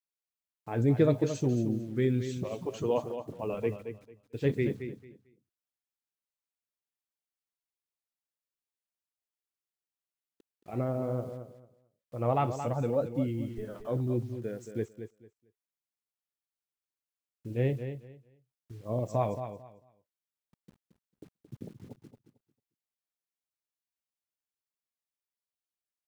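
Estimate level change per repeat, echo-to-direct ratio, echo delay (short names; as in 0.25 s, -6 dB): -13.5 dB, -9.5 dB, 0.223 s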